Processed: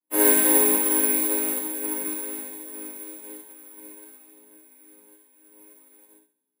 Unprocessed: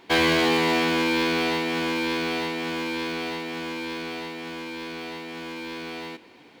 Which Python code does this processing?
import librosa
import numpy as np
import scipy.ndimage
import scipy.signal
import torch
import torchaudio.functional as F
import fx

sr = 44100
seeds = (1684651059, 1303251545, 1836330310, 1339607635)

p1 = fx.chord_vocoder(x, sr, chord='major triad', root=56)
p2 = (np.kron(scipy.signal.resample_poly(p1, 1, 4), np.eye(4)[0]) * 4)[:len(p1)]
p3 = fx.chorus_voices(p2, sr, voices=6, hz=0.44, base_ms=24, depth_ms=4.8, mix_pct=40)
p4 = p3 + fx.room_flutter(p3, sr, wall_m=11.9, rt60_s=1.2, dry=0)
p5 = fx.rev_schroeder(p4, sr, rt60_s=0.47, comb_ms=32, drr_db=0.5)
y = fx.upward_expand(p5, sr, threshold_db=-40.0, expansion=2.5)